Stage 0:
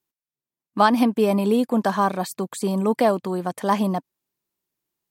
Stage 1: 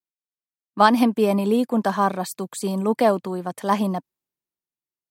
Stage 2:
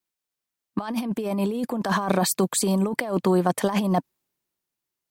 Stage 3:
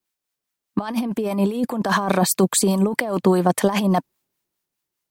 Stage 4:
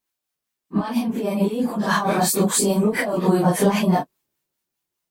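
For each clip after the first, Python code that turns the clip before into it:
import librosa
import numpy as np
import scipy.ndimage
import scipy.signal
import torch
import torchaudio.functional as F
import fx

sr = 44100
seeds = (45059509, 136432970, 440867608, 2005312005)

y1 = fx.band_widen(x, sr, depth_pct=40)
y2 = fx.over_compress(y1, sr, threshold_db=-27.0, ratio=-1.0)
y2 = y2 * 10.0 ** (3.0 / 20.0)
y3 = fx.harmonic_tremolo(y2, sr, hz=4.9, depth_pct=50, crossover_hz=810.0)
y3 = y3 * 10.0 ** (6.0 / 20.0)
y4 = fx.phase_scramble(y3, sr, seeds[0], window_ms=100)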